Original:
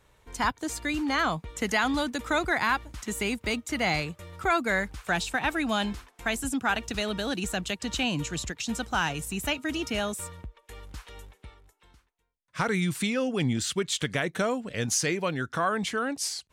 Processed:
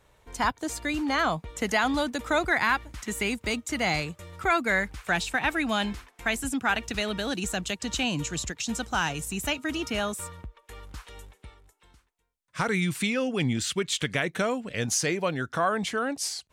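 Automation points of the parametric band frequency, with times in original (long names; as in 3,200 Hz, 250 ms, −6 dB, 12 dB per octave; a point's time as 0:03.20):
parametric band +3.5 dB 0.75 octaves
650 Hz
from 0:02.48 2,000 Hz
from 0:03.31 7,300 Hz
from 0:04.38 2,100 Hz
from 0:07.29 6,800 Hz
from 0:09.62 1,200 Hz
from 0:11.04 8,400 Hz
from 0:12.71 2,400 Hz
from 0:14.81 660 Hz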